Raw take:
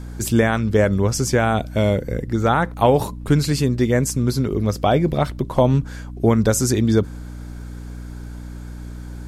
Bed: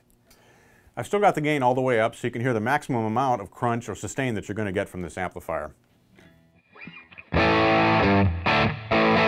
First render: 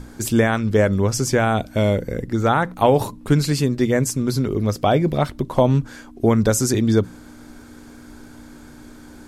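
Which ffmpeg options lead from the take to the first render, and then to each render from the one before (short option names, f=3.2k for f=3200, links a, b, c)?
-af "bandreject=f=60:t=h:w=6,bandreject=f=120:t=h:w=6,bandreject=f=180:t=h:w=6"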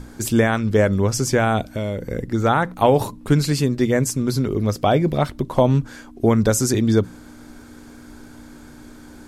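-filter_complex "[0:a]asettb=1/sr,asplit=3[a][b][c];[a]atrim=end=1.614[d];[b]atrim=start=1.61:end=2.11,asetpts=PTS-STARTPTS,afade=t=in:d=0.004:c=qsin,afade=t=out:st=0.496:d=0.004:c=qsin,acompressor=threshold=-23dB:ratio=2.5:attack=3.2:release=140:knee=1:detection=peak[e];[c]atrim=start=2.106[f];[d][e]acrossfade=d=0.004:c1=hsin:c2=qsin[g];[g][f]acrossfade=d=0.004:c1=qsin:c2=hsin"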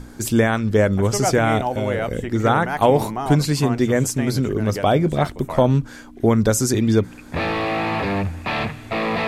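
-filter_complex "[1:a]volume=-3dB[a];[0:a][a]amix=inputs=2:normalize=0"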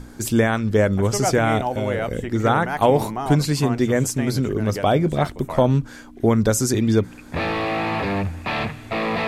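-af "volume=-1dB"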